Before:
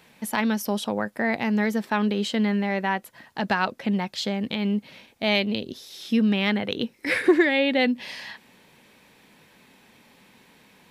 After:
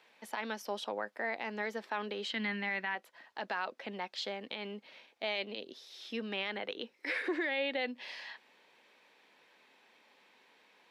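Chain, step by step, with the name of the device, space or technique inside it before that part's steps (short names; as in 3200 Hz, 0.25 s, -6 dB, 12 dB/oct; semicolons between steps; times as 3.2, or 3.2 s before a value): 2.3–2.95 graphic EQ 125/250/500/2000/4000/8000 Hz +9/+6/-9/+7/+4/-5 dB; DJ mixer with the lows and highs turned down (three-band isolator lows -24 dB, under 340 Hz, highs -14 dB, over 5800 Hz; limiter -17.5 dBFS, peak gain reduction 7.5 dB); gain -7.5 dB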